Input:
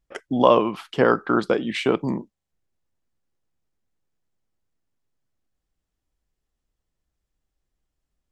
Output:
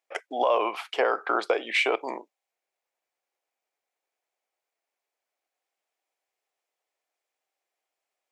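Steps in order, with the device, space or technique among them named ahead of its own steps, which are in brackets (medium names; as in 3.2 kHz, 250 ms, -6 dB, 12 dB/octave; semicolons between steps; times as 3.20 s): laptop speaker (high-pass 440 Hz 24 dB/octave; peaking EQ 730 Hz +7 dB 0.6 oct; peaking EQ 2.3 kHz +8 dB 0.39 oct; peak limiter -13 dBFS, peak gain reduction 13 dB)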